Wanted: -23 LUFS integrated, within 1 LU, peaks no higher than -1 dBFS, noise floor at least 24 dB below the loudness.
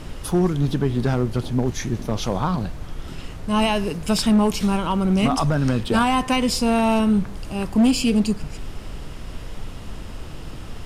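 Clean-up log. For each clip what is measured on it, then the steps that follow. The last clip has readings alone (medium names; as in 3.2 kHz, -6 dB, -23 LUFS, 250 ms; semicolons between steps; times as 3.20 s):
clipped samples 1.2%; clipping level -12.0 dBFS; noise floor -35 dBFS; noise floor target -45 dBFS; loudness -21.0 LUFS; peak level -12.0 dBFS; loudness target -23.0 LUFS
-> clip repair -12 dBFS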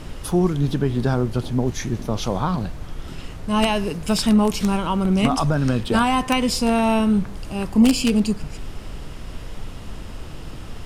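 clipped samples 0.0%; noise floor -35 dBFS; noise floor target -45 dBFS
-> noise print and reduce 10 dB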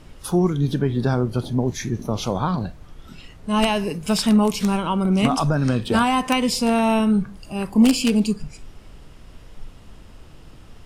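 noise floor -45 dBFS; loudness -21.0 LUFS; peak level -3.0 dBFS; loudness target -23.0 LUFS
-> trim -2 dB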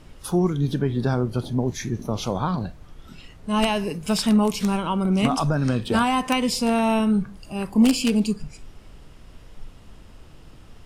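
loudness -23.0 LUFS; peak level -5.0 dBFS; noise floor -47 dBFS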